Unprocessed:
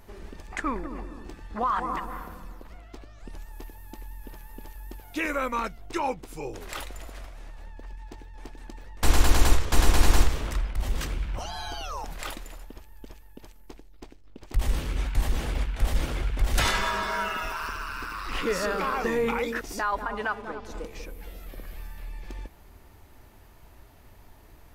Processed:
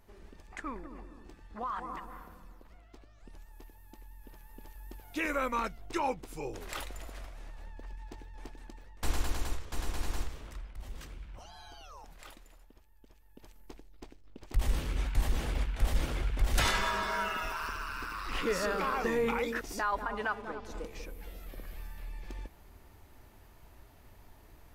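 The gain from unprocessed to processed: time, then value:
4.1 s -10.5 dB
5.36 s -3.5 dB
8.43 s -3.5 dB
9.48 s -15.5 dB
13.08 s -15.5 dB
13.57 s -4 dB

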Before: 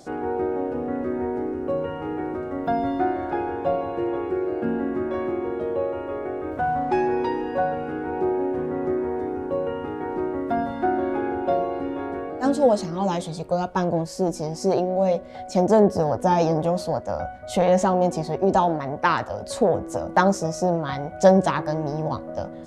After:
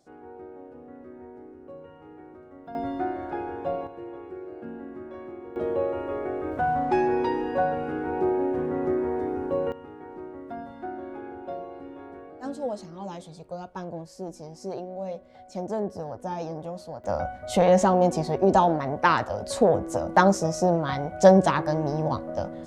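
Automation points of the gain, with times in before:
-18 dB
from 2.75 s -6 dB
from 3.87 s -13.5 dB
from 5.56 s -1 dB
from 9.72 s -13 dB
from 17.04 s 0 dB

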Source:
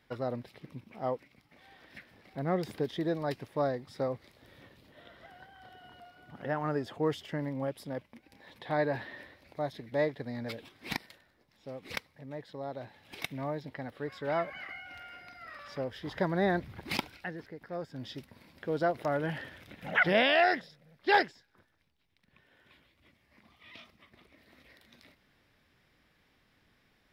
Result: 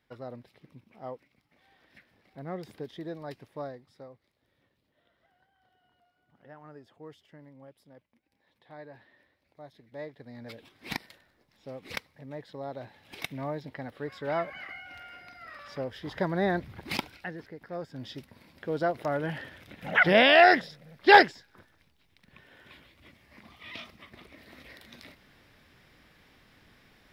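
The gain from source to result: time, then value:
3.58 s -7 dB
4.15 s -17 dB
9.18 s -17 dB
10.1 s -10.5 dB
10.97 s +1 dB
19.64 s +1 dB
20.6 s +9 dB

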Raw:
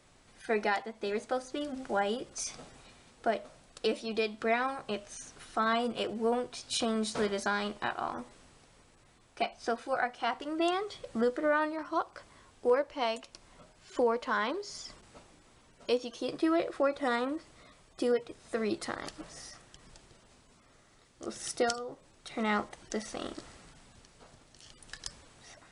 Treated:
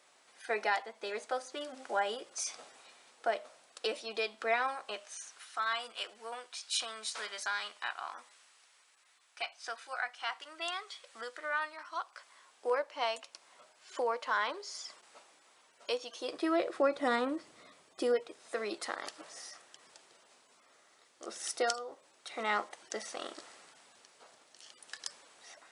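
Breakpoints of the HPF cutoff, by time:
4.69 s 560 Hz
5.59 s 1300 Hz
12.03 s 1300 Hz
12.68 s 640 Hz
16.09 s 640 Hz
17.1 s 160 Hz
18.6 s 500 Hz

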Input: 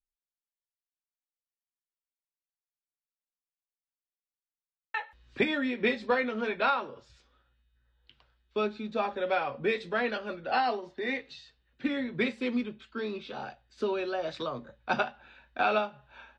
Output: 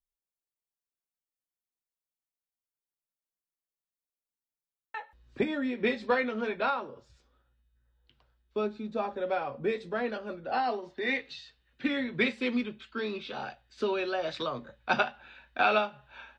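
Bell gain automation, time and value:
bell 2800 Hz 2.5 oct
5.48 s -9 dB
6.11 s +1 dB
6.89 s -7.5 dB
10.54 s -7.5 dB
11.09 s +4 dB

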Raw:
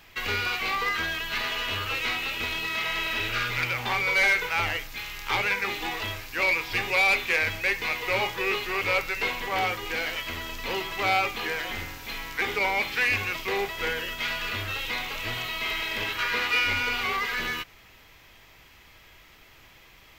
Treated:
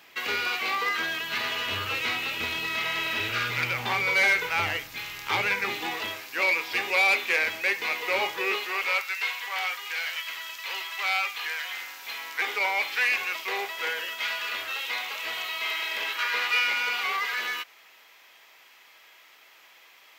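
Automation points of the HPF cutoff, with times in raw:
0.96 s 260 Hz
1.59 s 87 Hz
5.62 s 87 Hz
6.21 s 300 Hz
8.44 s 300 Hz
9.11 s 1200 Hz
11.69 s 1200 Hz
12.23 s 590 Hz

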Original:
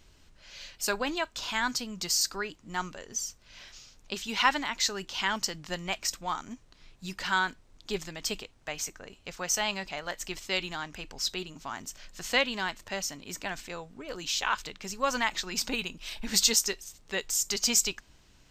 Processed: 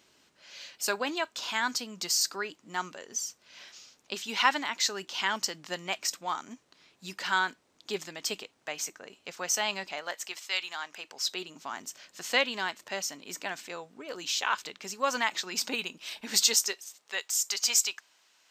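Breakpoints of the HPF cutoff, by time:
9.87 s 250 Hz
10.52 s 1000 Hz
11.55 s 260 Hz
16.19 s 260 Hz
17.22 s 780 Hz

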